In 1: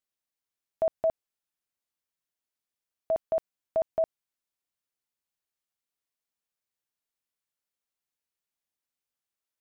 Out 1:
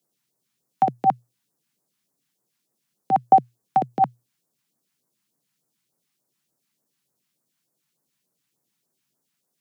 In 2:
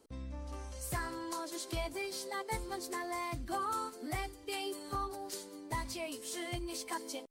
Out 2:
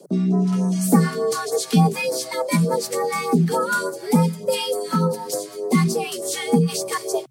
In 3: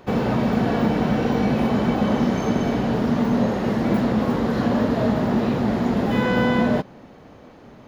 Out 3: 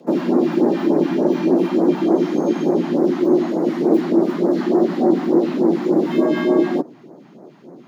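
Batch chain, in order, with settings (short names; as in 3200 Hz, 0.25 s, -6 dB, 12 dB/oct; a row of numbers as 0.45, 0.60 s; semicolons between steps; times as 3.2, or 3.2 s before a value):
tilt shelf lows +4.5 dB, about 660 Hz; phaser stages 2, 3.4 Hz, lowest notch 320–2800 Hz; frequency shift +120 Hz; normalise peaks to -3 dBFS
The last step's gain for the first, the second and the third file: +17.0, +19.5, +2.0 dB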